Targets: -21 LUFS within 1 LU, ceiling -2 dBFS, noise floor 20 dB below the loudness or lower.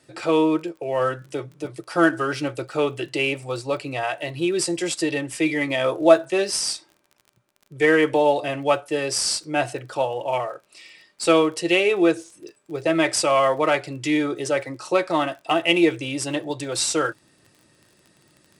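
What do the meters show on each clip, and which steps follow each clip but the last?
tick rate 26 per s; loudness -22.0 LUFS; peak level -2.0 dBFS; loudness target -21.0 LUFS
-> de-click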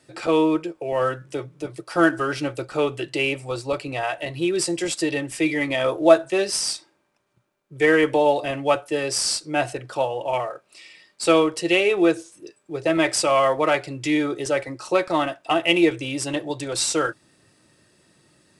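tick rate 0 per s; loudness -22.0 LUFS; peak level -2.0 dBFS; loudness target -21.0 LUFS
-> trim +1 dB; peak limiter -2 dBFS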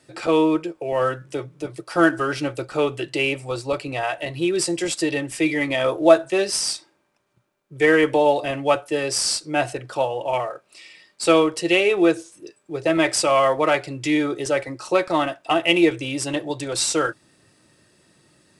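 loudness -21.0 LUFS; peak level -2.0 dBFS; noise floor -65 dBFS

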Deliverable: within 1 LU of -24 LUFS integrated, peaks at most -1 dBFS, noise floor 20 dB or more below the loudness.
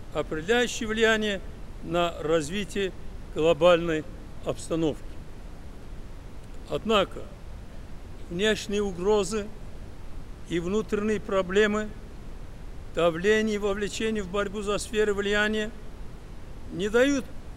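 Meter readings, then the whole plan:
noise floor -43 dBFS; noise floor target -47 dBFS; loudness -26.5 LUFS; peak level -7.5 dBFS; loudness target -24.0 LUFS
-> noise print and reduce 6 dB; trim +2.5 dB

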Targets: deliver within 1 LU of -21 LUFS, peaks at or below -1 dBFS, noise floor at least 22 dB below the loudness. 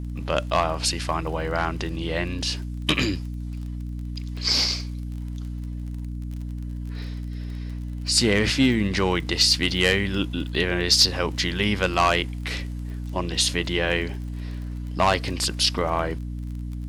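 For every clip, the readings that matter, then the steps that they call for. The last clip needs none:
tick rate 31 per s; hum 60 Hz; highest harmonic 300 Hz; hum level -29 dBFS; loudness -24.0 LUFS; peak level -8.0 dBFS; loudness target -21.0 LUFS
-> de-click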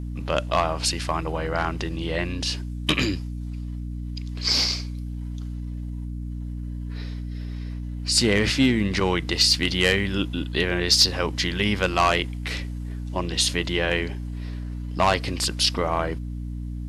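tick rate 0 per s; hum 60 Hz; highest harmonic 300 Hz; hum level -29 dBFS
-> de-hum 60 Hz, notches 5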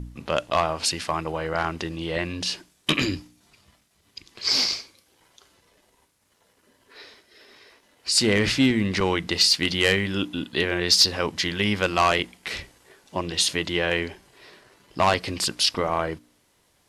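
hum not found; loudness -23.0 LUFS; peak level -8.5 dBFS; loudness target -21.0 LUFS
-> trim +2 dB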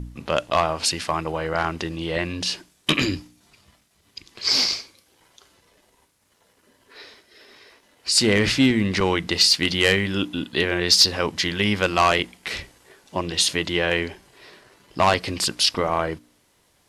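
loudness -21.0 LUFS; peak level -6.5 dBFS; noise floor -63 dBFS

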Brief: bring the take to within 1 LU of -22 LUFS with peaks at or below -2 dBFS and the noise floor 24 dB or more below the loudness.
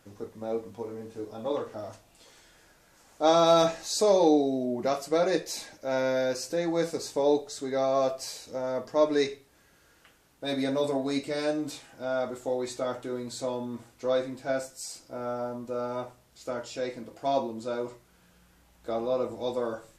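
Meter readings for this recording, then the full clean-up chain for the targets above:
loudness -29.0 LUFS; peak level -11.0 dBFS; loudness target -22.0 LUFS
-> trim +7 dB

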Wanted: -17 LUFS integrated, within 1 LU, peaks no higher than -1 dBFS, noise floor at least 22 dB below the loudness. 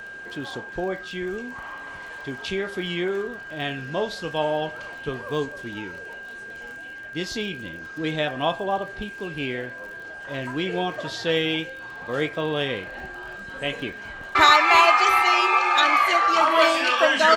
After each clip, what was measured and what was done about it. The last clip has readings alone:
tick rate 33 per s; steady tone 1.6 kHz; tone level -36 dBFS; loudness -22.5 LUFS; peak level -2.0 dBFS; loudness target -17.0 LUFS
-> de-click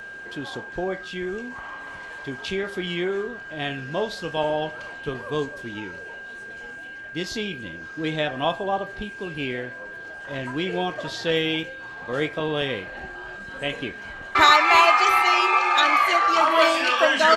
tick rate 0.058 per s; steady tone 1.6 kHz; tone level -36 dBFS
-> band-stop 1.6 kHz, Q 30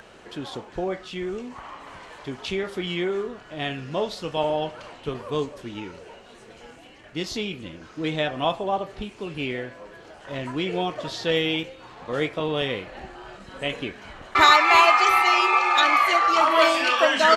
steady tone not found; loudness -22.0 LUFS; peak level -2.0 dBFS; loudness target -17.0 LUFS
-> trim +5 dB; peak limiter -1 dBFS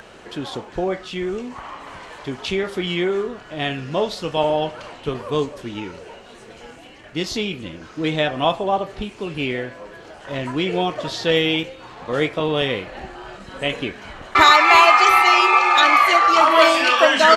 loudness -17.5 LUFS; peak level -1.0 dBFS; noise floor -43 dBFS

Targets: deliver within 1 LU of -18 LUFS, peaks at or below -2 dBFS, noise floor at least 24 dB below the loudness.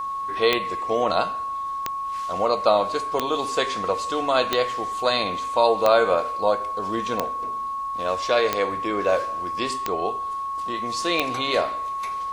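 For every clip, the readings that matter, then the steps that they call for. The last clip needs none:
clicks found 9; steady tone 1.1 kHz; tone level -26 dBFS; loudness -23.5 LUFS; peak level -4.0 dBFS; loudness target -18.0 LUFS
-> de-click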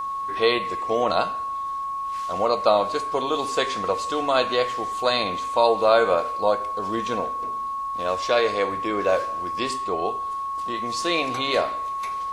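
clicks found 0; steady tone 1.1 kHz; tone level -26 dBFS
-> band-stop 1.1 kHz, Q 30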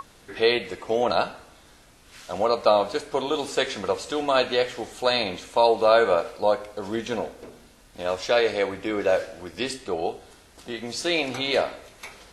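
steady tone not found; loudness -24.5 LUFS; peak level -5.0 dBFS; loudness target -18.0 LUFS
-> trim +6.5 dB; peak limiter -2 dBFS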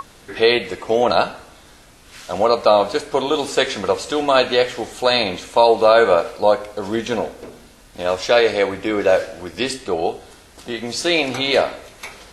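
loudness -18.5 LUFS; peak level -2.0 dBFS; noise floor -47 dBFS

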